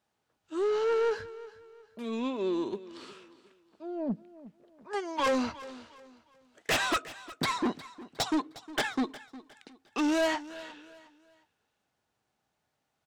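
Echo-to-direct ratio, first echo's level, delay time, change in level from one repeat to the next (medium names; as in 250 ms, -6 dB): -17.0 dB, -17.5 dB, 359 ms, -9.5 dB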